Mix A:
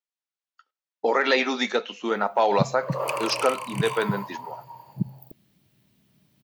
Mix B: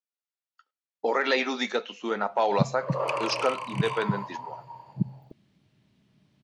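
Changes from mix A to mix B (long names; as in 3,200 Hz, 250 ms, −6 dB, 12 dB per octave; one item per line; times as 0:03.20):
speech −3.5 dB
background: add high-frequency loss of the air 91 metres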